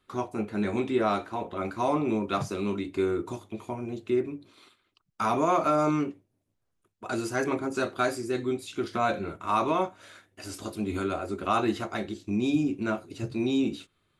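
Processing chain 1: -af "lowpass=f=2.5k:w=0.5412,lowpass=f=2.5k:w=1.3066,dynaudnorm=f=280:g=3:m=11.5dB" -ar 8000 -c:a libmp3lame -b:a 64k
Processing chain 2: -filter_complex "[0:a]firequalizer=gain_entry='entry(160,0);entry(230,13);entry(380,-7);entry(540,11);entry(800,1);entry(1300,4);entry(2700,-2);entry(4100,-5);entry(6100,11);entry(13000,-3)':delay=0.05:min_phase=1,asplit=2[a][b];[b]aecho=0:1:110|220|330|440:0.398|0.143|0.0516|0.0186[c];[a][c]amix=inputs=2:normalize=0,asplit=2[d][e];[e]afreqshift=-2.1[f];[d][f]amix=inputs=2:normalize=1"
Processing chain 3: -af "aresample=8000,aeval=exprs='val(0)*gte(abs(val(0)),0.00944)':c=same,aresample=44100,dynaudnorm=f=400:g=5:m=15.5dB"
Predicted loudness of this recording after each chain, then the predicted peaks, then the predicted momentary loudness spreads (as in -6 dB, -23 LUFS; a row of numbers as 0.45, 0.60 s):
-19.0, -26.5, -17.5 LUFS; -3.0, -8.5, -1.5 dBFS; 10, 12, 12 LU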